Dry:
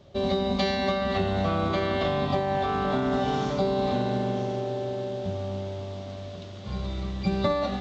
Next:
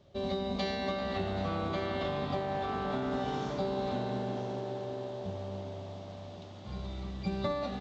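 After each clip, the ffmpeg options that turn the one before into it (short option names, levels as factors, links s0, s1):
-filter_complex "[0:a]asplit=8[s0][s1][s2][s3][s4][s5][s6][s7];[s1]adelay=390,afreqshift=70,volume=0.2[s8];[s2]adelay=780,afreqshift=140,volume=0.127[s9];[s3]adelay=1170,afreqshift=210,volume=0.0813[s10];[s4]adelay=1560,afreqshift=280,volume=0.0525[s11];[s5]adelay=1950,afreqshift=350,volume=0.0335[s12];[s6]adelay=2340,afreqshift=420,volume=0.0214[s13];[s7]adelay=2730,afreqshift=490,volume=0.0136[s14];[s0][s8][s9][s10][s11][s12][s13][s14]amix=inputs=8:normalize=0,volume=0.398"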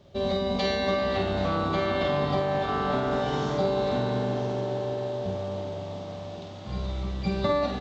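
-filter_complex "[0:a]asplit=2[s0][s1];[s1]adelay=48,volume=0.562[s2];[s0][s2]amix=inputs=2:normalize=0,volume=2"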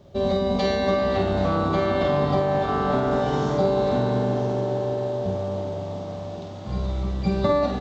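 -af "equalizer=f=3000:w=0.65:g=-6.5,volume=1.78"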